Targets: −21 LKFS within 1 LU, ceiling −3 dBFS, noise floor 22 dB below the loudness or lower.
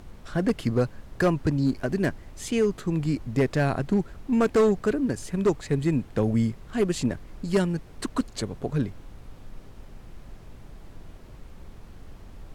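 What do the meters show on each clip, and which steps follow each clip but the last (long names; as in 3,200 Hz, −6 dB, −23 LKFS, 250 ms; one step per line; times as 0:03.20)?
share of clipped samples 1.0%; peaks flattened at −15.5 dBFS; background noise floor −47 dBFS; target noise floor −49 dBFS; integrated loudness −26.5 LKFS; sample peak −15.5 dBFS; target loudness −21.0 LKFS
→ clipped peaks rebuilt −15.5 dBFS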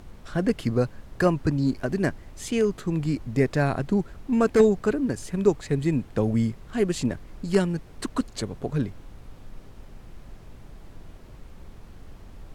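share of clipped samples 0.0%; background noise floor −47 dBFS; target noise floor −48 dBFS
→ noise reduction from a noise print 6 dB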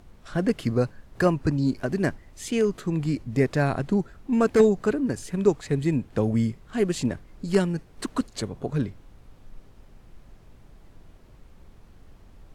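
background noise floor −52 dBFS; integrated loudness −25.5 LKFS; sample peak −6.5 dBFS; target loudness −21.0 LKFS
→ level +4.5 dB
brickwall limiter −3 dBFS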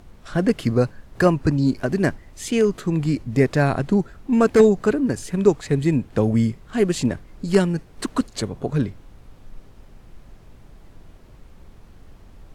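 integrated loudness −21.0 LKFS; sample peak −3.0 dBFS; background noise floor −48 dBFS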